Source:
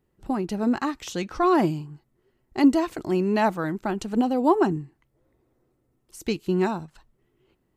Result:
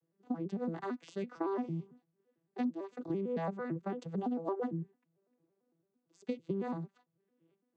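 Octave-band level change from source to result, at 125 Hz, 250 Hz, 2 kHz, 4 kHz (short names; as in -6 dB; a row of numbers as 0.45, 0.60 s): -10.0 dB, -14.0 dB, -17.0 dB, under -20 dB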